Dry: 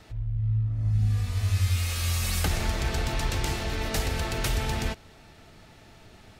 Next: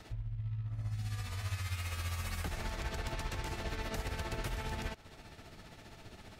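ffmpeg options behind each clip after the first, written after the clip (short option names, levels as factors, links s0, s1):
-filter_complex "[0:a]acrossover=split=680|2200[s0][s1][s2];[s0]acompressor=threshold=0.0141:ratio=4[s3];[s1]acompressor=threshold=0.00631:ratio=4[s4];[s2]acompressor=threshold=0.00355:ratio=4[s5];[s3][s4][s5]amix=inputs=3:normalize=0,tremolo=f=15:d=0.5,volume=1.12"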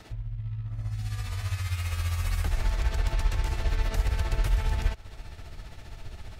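-af "asubboost=boost=6:cutoff=84,volume=1.58"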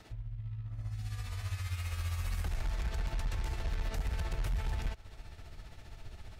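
-af "asoftclip=type=hard:threshold=0.0794,volume=0.473"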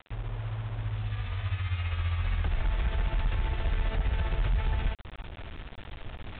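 -af "acrusher=bits=7:mix=0:aa=0.000001,volume=2" -ar 8000 -c:a adpcm_g726 -b:a 40k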